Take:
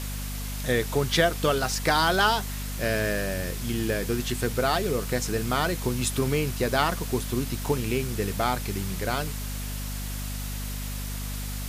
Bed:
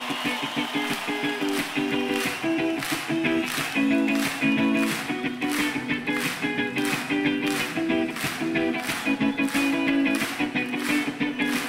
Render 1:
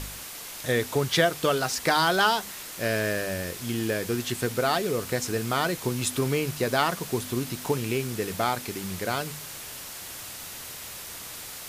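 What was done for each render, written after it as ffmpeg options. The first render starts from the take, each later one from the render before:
-af "bandreject=f=50:t=h:w=4,bandreject=f=100:t=h:w=4,bandreject=f=150:t=h:w=4,bandreject=f=200:t=h:w=4,bandreject=f=250:t=h:w=4"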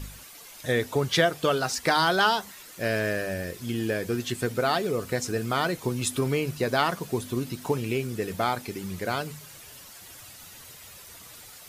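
-af "afftdn=nr=10:nf=-40"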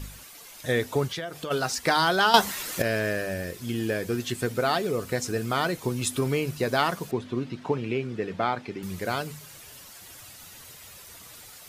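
-filter_complex "[0:a]asplit=3[s0][s1][s2];[s0]afade=t=out:st=1.07:d=0.02[s3];[s1]acompressor=threshold=0.0251:ratio=4:attack=3.2:release=140:knee=1:detection=peak,afade=t=in:st=1.07:d=0.02,afade=t=out:st=1.5:d=0.02[s4];[s2]afade=t=in:st=1.5:d=0.02[s5];[s3][s4][s5]amix=inputs=3:normalize=0,asettb=1/sr,asplit=3[s6][s7][s8];[s6]atrim=end=7.114[s9];[s7]atrim=start=7.11:end=8.83,asetpts=PTS-STARTPTS,afade=t=in:d=0.004:c=qsin,afade=t=out:st=1.716:d=0.004:c=qsin,highpass=110,lowpass=3200[s10];[s8]atrim=start=8.826[s11];[s9][s10]acrossfade=d=0.004:c1=hsin:c2=qsin[s12];[s12][s11]acrossfade=d=0.004:c1=qsin:c2=hsin,asplit=3[s13][s14][s15];[s13]atrim=end=2.342[s16];[s14]atrim=start=2.338:end=2.822,asetpts=PTS-STARTPTS,volume=3.98[s17];[s15]atrim=start=2.818[s18];[s16][s17]acrossfade=d=0.004:c1=hsin:c2=hsin[s19];[s19][s18]acrossfade=d=0.004:c1=hsin:c2=hsin"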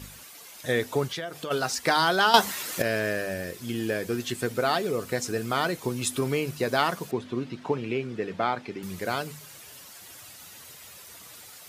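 -af "highpass=f=130:p=1"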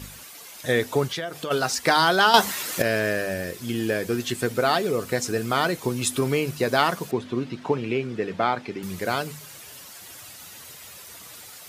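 -af "volume=1.5,alimiter=limit=0.891:level=0:latency=1"

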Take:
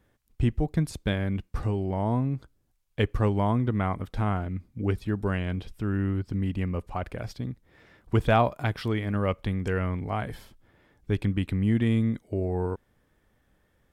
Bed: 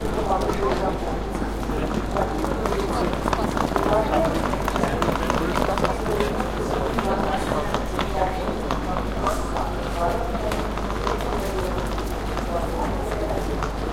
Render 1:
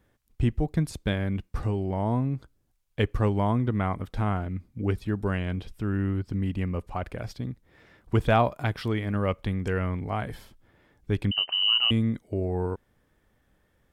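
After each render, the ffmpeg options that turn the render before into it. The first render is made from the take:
-filter_complex "[0:a]asettb=1/sr,asplit=3[s0][s1][s2];[s0]atrim=end=11.314[s3];[s1]atrim=start=11.31:end=11.91,asetpts=PTS-STARTPTS,afade=t=in:d=0.004:c=qsin,afade=t=out:st=0.596:d=0.004:c=qsin,lowpass=f=2600:t=q:w=0.5098,lowpass=f=2600:t=q:w=0.6013,lowpass=f=2600:t=q:w=0.9,lowpass=f=2600:t=q:w=2.563,afreqshift=-3100[s4];[s2]atrim=start=11.906[s5];[s3][s4]acrossfade=d=0.004:c1=hsin:c2=qsin[s6];[s6][s5]acrossfade=d=0.004:c1=qsin:c2=hsin"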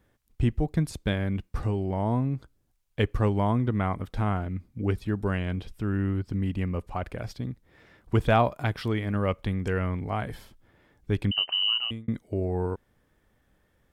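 -filter_complex "[0:a]asplit=2[s0][s1];[s0]atrim=end=12.08,asetpts=PTS-STARTPTS,afade=t=out:st=11.56:d=0.52[s2];[s1]atrim=start=12.08,asetpts=PTS-STARTPTS,afade=t=in:d=0.004:c=hsin[s3];[s2][s3]concat=n=2:v=0:a=1"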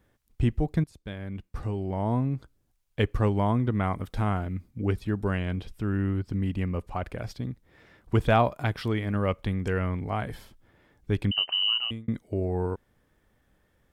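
-filter_complex "[0:a]asettb=1/sr,asplit=3[s0][s1][s2];[s0]atrim=end=3.834[s3];[s1]atrim=start=3.83:end=4.71,asetpts=PTS-STARTPTS,afade=t=in:d=0.004:c=qsin,afade=t=out:st=0.876:d=0.004:c=qsin,highshelf=f=5400:g=5.5[s4];[s2]atrim=start=4.706[s5];[s3][s4]acrossfade=d=0.004:c1=hsin:c2=qsin[s6];[s6][s5]acrossfade=d=0.004:c1=qsin:c2=hsin,asplit=2[s7][s8];[s7]atrim=end=0.84,asetpts=PTS-STARTPTS,afade=t=out:st=0.836:d=0.004:c=hsin:silence=0.112202[s9];[s8]atrim=start=0.84,asetpts=PTS-STARTPTS,afade=t=in:d=1.34:silence=0.112202[s10];[s9][s10]concat=n=2:v=0:a=1"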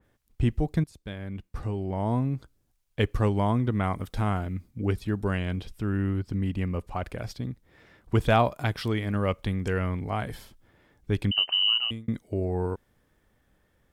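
-af "adynamicequalizer=threshold=0.00708:dfrequency=3200:dqfactor=0.7:tfrequency=3200:tqfactor=0.7:attack=5:release=100:ratio=0.375:range=2.5:mode=boostabove:tftype=highshelf"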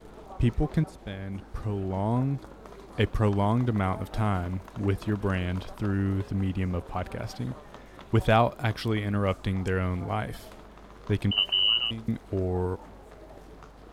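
-filter_complex "[1:a]volume=0.075[s0];[0:a][s0]amix=inputs=2:normalize=0"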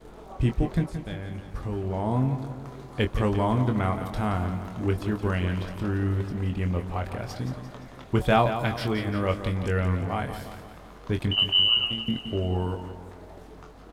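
-filter_complex "[0:a]asplit=2[s0][s1];[s1]adelay=23,volume=0.447[s2];[s0][s2]amix=inputs=2:normalize=0,asplit=2[s3][s4];[s4]aecho=0:1:173|346|519|692|865|1038:0.316|0.174|0.0957|0.0526|0.0289|0.0159[s5];[s3][s5]amix=inputs=2:normalize=0"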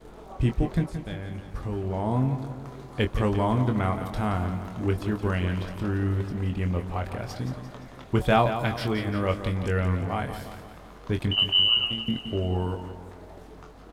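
-af anull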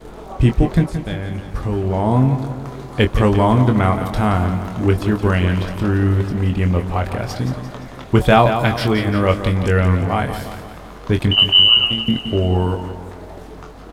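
-af "volume=3.16,alimiter=limit=0.891:level=0:latency=1"

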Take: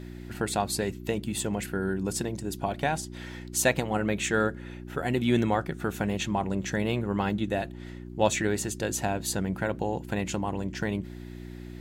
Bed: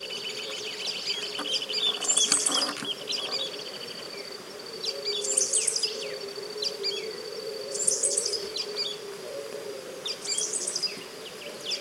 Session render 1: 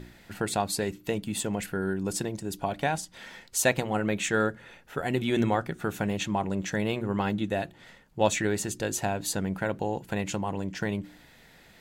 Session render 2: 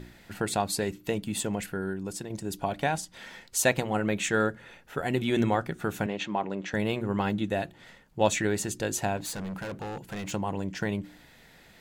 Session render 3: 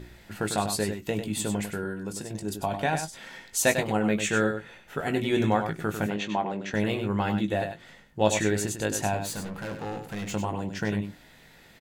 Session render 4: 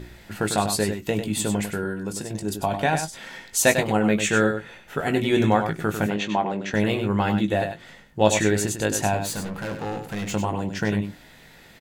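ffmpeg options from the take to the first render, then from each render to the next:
-af "bandreject=f=60:t=h:w=4,bandreject=f=120:t=h:w=4,bandreject=f=180:t=h:w=4,bandreject=f=240:t=h:w=4,bandreject=f=300:t=h:w=4,bandreject=f=360:t=h:w=4"
-filter_complex "[0:a]asettb=1/sr,asplit=3[s0][s1][s2];[s0]atrim=end=6.064[s3];[s1]atrim=start=6.06:end=6.74,asetpts=PTS-STARTPTS,afade=t=in:d=0.004:c=qsin,afade=t=out:st=0.676:d=0.004:c=qsin,highpass=240,lowpass=4100[s4];[s2]atrim=start=6.736[s5];[s3][s4]acrossfade=d=0.004:c1=hsin:c2=qsin[s6];[s6][s5]acrossfade=d=0.004:c1=qsin:c2=hsin,asettb=1/sr,asplit=3[s7][s8][s9];[s7]atrim=end=9.174[s10];[s8]atrim=start=9.17:end=10.32,asetpts=PTS-STARTPTS,afade=t=in:d=0.004:c=qsin,afade=t=out:st=1.146:d=0.004:c=qsin,asoftclip=type=hard:threshold=0.0237[s11];[s9]atrim=start=10.316[s12];[s10][s11]acrossfade=d=0.004:c1=hsin:c2=qsin[s13];[s13][s12]acrossfade=d=0.004:c1=qsin:c2=hsin,asplit=2[s14][s15];[s14]atrim=end=2.3,asetpts=PTS-STARTPTS,afade=t=out:st=1.46:d=0.84:silence=0.398107[s16];[s15]atrim=start=2.3,asetpts=PTS-STARTPTS,afade=t=in:d=0.004:c=hsin:silence=0.398107[s17];[s16][s17]concat=n=2:v=0:a=1"
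-filter_complex "[0:a]asplit=2[s0][s1];[s1]adelay=19,volume=0.398[s2];[s0][s2]amix=inputs=2:normalize=0,asplit=2[s3][s4];[s4]aecho=0:1:98:0.398[s5];[s3][s5]amix=inputs=2:normalize=0"
-af "volume=1.68"

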